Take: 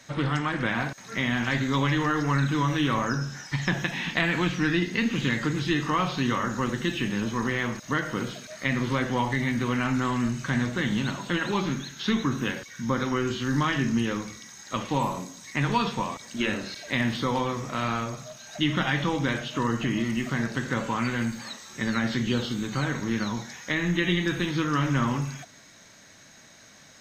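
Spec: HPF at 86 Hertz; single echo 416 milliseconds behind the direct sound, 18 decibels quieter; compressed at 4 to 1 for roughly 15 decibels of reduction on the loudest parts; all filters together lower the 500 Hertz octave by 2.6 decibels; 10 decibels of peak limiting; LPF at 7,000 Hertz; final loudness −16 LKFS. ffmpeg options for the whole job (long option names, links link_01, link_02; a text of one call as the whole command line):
ffmpeg -i in.wav -af "highpass=86,lowpass=7000,equalizer=frequency=500:width_type=o:gain=-3.5,acompressor=threshold=-40dB:ratio=4,alimiter=level_in=7.5dB:limit=-24dB:level=0:latency=1,volume=-7.5dB,aecho=1:1:416:0.126,volume=26.5dB" out.wav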